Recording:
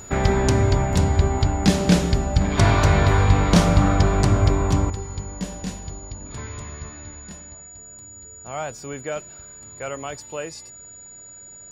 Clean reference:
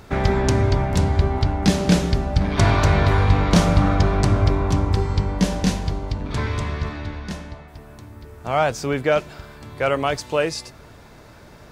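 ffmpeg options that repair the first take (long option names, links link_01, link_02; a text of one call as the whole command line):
ffmpeg -i in.wav -af "bandreject=frequency=6900:width=30,asetnsamples=nb_out_samples=441:pad=0,asendcmd='4.9 volume volume 10.5dB',volume=0dB" out.wav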